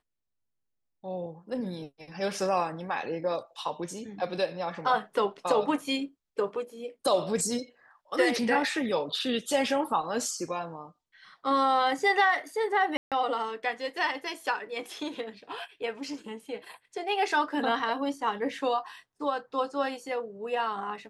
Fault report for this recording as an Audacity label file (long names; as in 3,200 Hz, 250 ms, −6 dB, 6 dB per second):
12.970000	13.120000	drop-out 147 ms